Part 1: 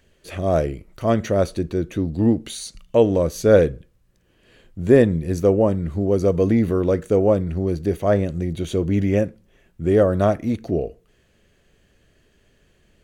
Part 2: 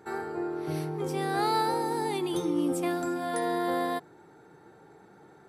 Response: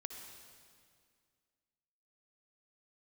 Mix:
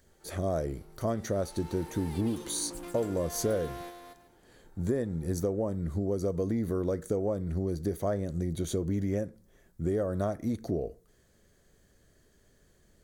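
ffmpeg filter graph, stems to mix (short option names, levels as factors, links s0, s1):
-filter_complex "[0:a]equalizer=f=2700:w=2.7:g=-14,acompressor=threshold=0.0794:ratio=8,volume=0.596,asplit=2[s0][s1];[1:a]highpass=150,asoftclip=type=tanh:threshold=0.02,volume=0.299,afade=t=in:st=1.42:d=0.77:silence=0.223872,asplit=3[s2][s3][s4];[s3]volume=0.398[s5];[s4]volume=0.668[s6];[s1]apad=whole_len=241673[s7];[s2][s7]sidechaingate=range=0.0224:threshold=0.002:ratio=16:detection=peak[s8];[2:a]atrim=start_sample=2205[s9];[s5][s9]afir=irnorm=-1:irlink=0[s10];[s6]aecho=0:1:143|286|429|572:1|0.23|0.0529|0.0122[s11];[s0][s8][s10][s11]amix=inputs=4:normalize=0,highshelf=f=5200:g=8.5"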